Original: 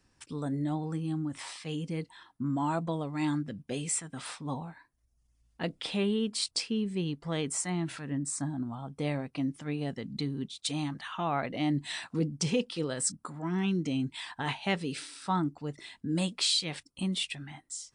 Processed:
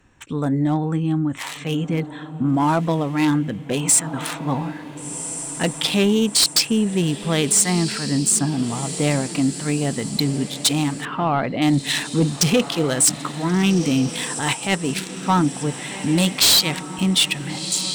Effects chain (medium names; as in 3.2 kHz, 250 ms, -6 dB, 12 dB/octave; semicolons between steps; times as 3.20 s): local Wiener filter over 9 samples; treble shelf 3.1 kHz +11.5 dB; echo that smears into a reverb 1464 ms, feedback 49%, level -13.5 dB; 14.14–15.25 s: transient shaper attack -9 dB, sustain -5 dB; in parallel at -7 dB: sine folder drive 13 dB, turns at -7 dBFS; 11.05–11.62 s: on the sum: distance through air 380 m